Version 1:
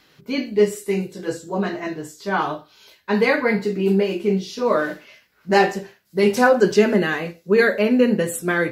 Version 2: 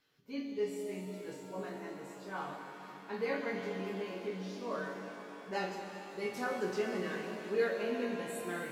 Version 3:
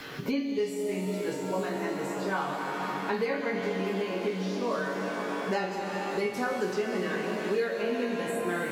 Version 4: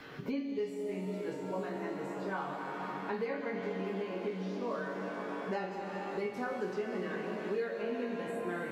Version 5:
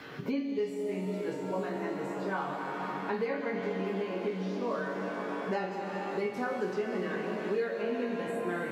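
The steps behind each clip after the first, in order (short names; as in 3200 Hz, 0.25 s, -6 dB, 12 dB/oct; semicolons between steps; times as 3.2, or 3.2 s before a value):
resonator bank F#2 major, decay 0.23 s; shimmer reverb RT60 3.8 s, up +7 st, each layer -8 dB, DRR 2.5 dB; gain -9 dB
three-band squash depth 100%; gain +6.5 dB
high shelf 3700 Hz -11.5 dB; gain -6 dB
HPF 63 Hz; gain +3.5 dB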